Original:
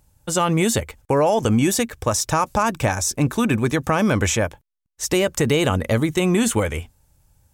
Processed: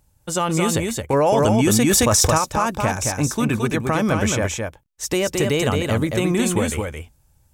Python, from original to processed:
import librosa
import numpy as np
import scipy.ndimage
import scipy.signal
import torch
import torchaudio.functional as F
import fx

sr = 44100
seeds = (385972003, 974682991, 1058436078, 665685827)

y = x + 10.0 ** (-4.0 / 20.0) * np.pad(x, (int(220 * sr / 1000.0), 0))[:len(x)]
y = fx.env_flatten(y, sr, amount_pct=100, at=(1.13, 2.38))
y = F.gain(torch.from_numpy(y), -2.0).numpy()